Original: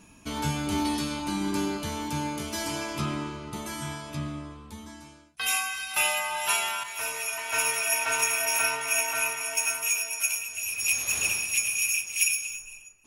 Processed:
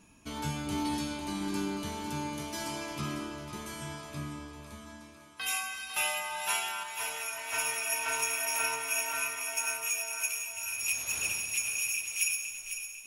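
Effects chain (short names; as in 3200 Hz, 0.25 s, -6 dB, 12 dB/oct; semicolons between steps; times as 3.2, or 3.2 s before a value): split-band echo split 380 Hz, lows 0.202 s, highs 0.501 s, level -9 dB; gain -6 dB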